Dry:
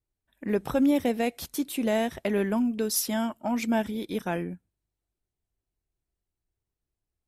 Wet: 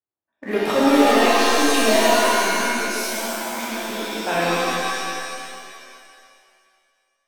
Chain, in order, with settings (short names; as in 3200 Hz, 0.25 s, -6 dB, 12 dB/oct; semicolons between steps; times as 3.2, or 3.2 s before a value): low-pass opened by the level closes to 1200 Hz, open at -25 dBFS; weighting filter A; 2.19–4.27 level quantiser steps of 22 dB; sample leveller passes 2; shimmer reverb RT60 2.1 s, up +7 st, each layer -2 dB, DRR -7 dB